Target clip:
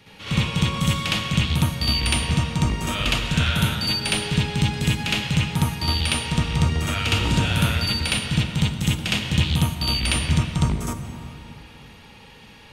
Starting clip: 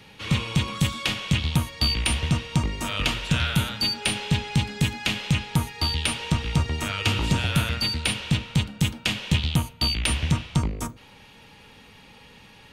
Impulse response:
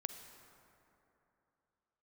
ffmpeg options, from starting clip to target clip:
-filter_complex "[0:a]asplit=2[a][b];[1:a]atrim=start_sample=2205,adelay=63[c];[b][c]afir=irnorm=-1:irlink=0,volume=7dB[d];[a][d]amix=inputs=2:normalize=0,volume=-3.5dB"

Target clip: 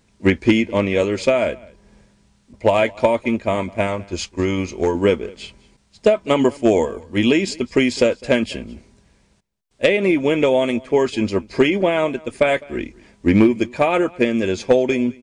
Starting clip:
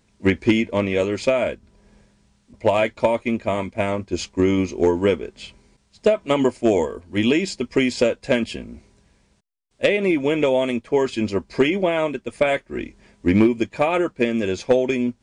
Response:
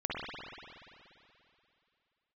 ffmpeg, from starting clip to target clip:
-filter_complex "[0:a]asettb=1/sr,asplit=3[a][b][c];[a]atrim=end=3.874[d];[b]atrim=start=3.87:end=4.95,asetpts=PTS-STARTPTS,afade=t=in:d=0.004:c=qsin,afade=t=out:st=1.076:d=0.004:c=qsin,equalizer=f=280:w=0.8:g=-6[e];[c]atrim=start=4.946[f];[d][e]acrossfade=d=0.004:c1=hsin:c2=qsin[g];[g][f]acrossfade=d=0.004:c1=qsin:c2=hsin,aecho=1:1:206:0.0668,volume=2.5dB"

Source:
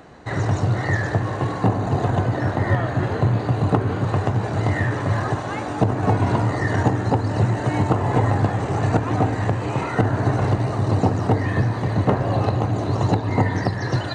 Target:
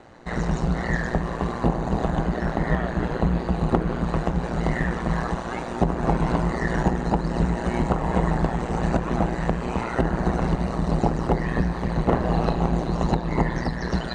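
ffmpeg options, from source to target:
-filter_complex "[0:a]asettb=1/sr,asplit=3[a][b][c];[a]atrim=end=12.094[d];[b]atrim=start=12.09:end=12.8,asetpts=PTS-STARTPTS,afade=t=in:d=0.004:c=qsin,afade=t=out:st=0.706:d=0.004:c=qsin,asplit=2[e][f];[f]adelay=36,volume=-3.5dB[g];[e][g]amix=inputs=2:normalize=0,atrim=end_sample=31311[h];[c]atrim=start=12.796[i];[d][h]acrossfade=d=0.004:c1=hsin:c2=qsin[j];[j][i]acrossfade=d=0.004:c1=qsin:c2=hsin,aeval=exprs='val(0)*sin(2*PI*59*n/s)':c=same"

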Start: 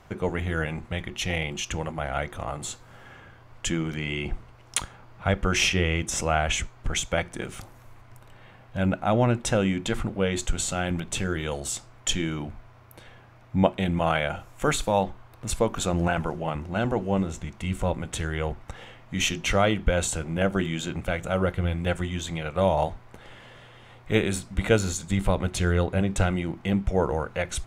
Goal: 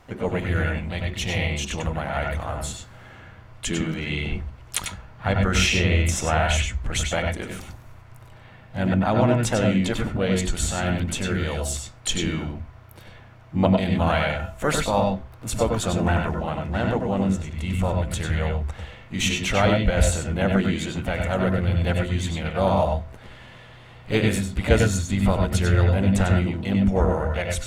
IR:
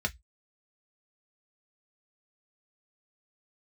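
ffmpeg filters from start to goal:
-filter_complex "[0:a]bandreject=f=131:t=h:w=4,bandreject=f=262:t=h:w=4,bandreject=f=393:t=h:w=4,bandreject=f=524:t=h:w=4,bandreject=f=655:t=h:w=4,asplit=2[a][b];[b]asetrate=55563,aresample=44100,atempo=0.793701,volume=-9dB[c];[a][c]amix=inputs=2:normalize=0,asplit=2[d][e];[1:a]atrim=start_sample=2205,adelay=95[f];[e][f]afir=irnorm=-1:irlink=0,volume=-8.5dB[g];[d][g]amix=inputs=2:normalize=0"

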